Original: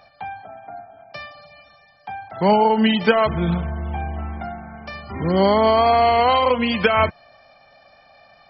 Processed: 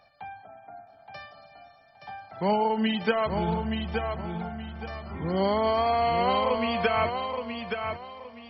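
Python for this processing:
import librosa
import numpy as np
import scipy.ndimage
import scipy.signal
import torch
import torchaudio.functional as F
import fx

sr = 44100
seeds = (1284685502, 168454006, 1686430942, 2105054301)

y = fx.high_shelf(x, sr, hz=3600.0, db=11.5, at=(3.88, 4.36))
y = fx.echo_feedback(y, sr, ms=872, feedback_pct=28, wet_db=-6)
y = F.gain(torch.from_numpy(y), -9.0).numpy()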